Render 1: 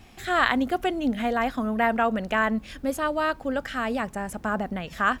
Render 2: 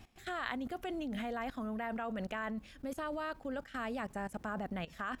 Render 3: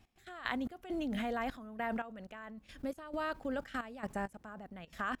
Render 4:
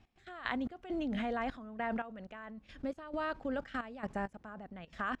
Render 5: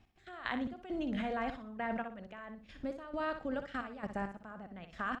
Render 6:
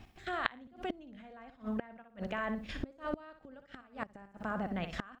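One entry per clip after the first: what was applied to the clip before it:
level held to a coarse grid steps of 17 dB; trim -4 dB
trance gate "..x.xxx.x." 67 bpm -12 dB; trim +2.5 dB
distance through air 100 m; trim +1 dB
feedback delay 61 ms, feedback 26%, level -9 dB; trim -1 dB
inverted gate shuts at -35 dBFS, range -28 dB; trim +12 dB

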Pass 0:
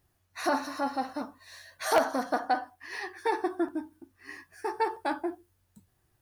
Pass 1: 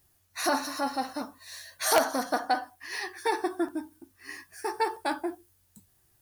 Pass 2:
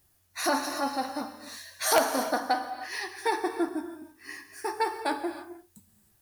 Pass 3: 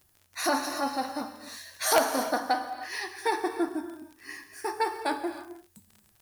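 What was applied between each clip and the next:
treble shelf 3.8 kHz +11.5 dB
gated-style reverb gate 340 ms flat, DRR 8 dB
crackle 47 per s -40 dBFS

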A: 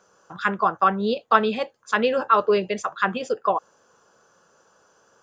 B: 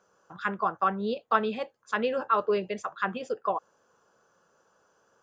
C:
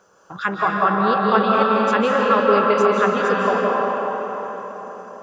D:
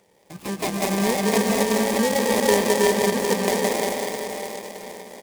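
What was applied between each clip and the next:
peaking EQ 6 kHz -4 dB 2 oct; trim -6.5 dB
in parallel at +1 dB: compression, threshold -34 dBFS, peak gain reduction 15.5 dB; on the sum: algorithmic reverb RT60 4.7 s, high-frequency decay 0.6×, pre-delay 120 ms, DRR -3.5 dB; trim +4 dB
bit-reversed sample order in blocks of 32 samples; resampled via 11.025 kHz; delay time shaken by noise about 5.9 kHz, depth 0.052 ms

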